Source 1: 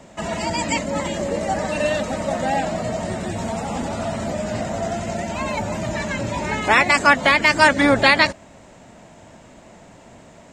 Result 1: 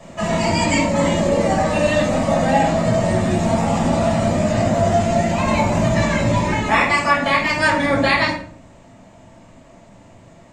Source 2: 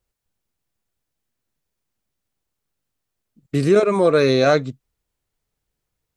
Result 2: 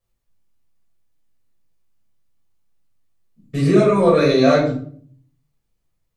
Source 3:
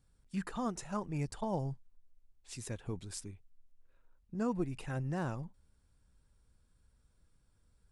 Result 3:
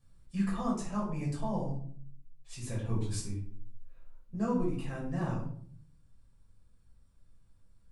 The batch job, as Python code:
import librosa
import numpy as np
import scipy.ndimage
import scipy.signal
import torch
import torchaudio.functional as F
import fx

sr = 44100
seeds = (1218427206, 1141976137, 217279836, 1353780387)

y = fx.rider(x, sr, range_db=4, speed_s=0.5)
y = fx.room_shoebox(y, sr, seeds[0], volume_m3=580.0, walls='furnished', distance_m=5.9)
y = F.gain(torch.from_numpy(y), -6.5).numpy()